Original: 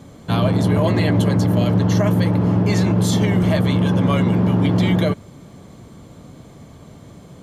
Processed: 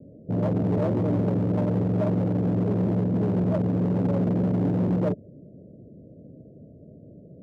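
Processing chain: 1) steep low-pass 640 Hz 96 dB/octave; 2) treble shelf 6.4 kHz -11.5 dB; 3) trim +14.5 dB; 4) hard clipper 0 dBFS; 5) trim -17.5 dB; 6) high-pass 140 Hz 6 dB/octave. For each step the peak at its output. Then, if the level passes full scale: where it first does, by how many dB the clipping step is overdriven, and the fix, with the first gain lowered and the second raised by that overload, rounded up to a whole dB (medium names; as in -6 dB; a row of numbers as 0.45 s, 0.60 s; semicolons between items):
-6.0 dBFS, -6.0 dBFS, +8.5 dBFS, 0.0 dBFS, -17.5 dBFS, -14.0 dBFS; step 3, 8.5 dB; step 3 +5.5 dB, step 5 -8.5 dB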